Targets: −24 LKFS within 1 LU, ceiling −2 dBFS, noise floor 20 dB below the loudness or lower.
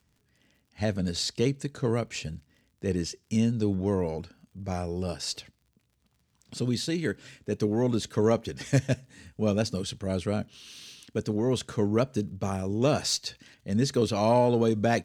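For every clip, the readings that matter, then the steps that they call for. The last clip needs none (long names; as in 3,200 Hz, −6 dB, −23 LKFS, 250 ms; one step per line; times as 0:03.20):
crackle rate 42 per second; integrated loudness −28.5 LKFS; sample peak −10.0 dBFS; target loudness −24.0 LKFS
→ click removal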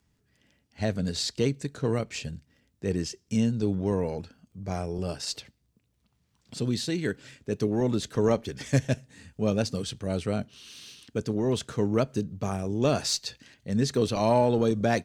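crackle rate 0.60 per second; integrated loudness −28.5 LKFS; sample peak −10.0 dBFS; target loudness −24.0 LKFS
→ level +4.5 dB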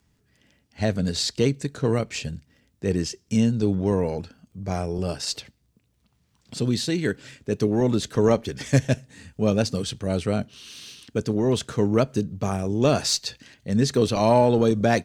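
integrated loudness −24.0 LKFS; sample peak −5.5 dBFS; background noise floor −68 dBFS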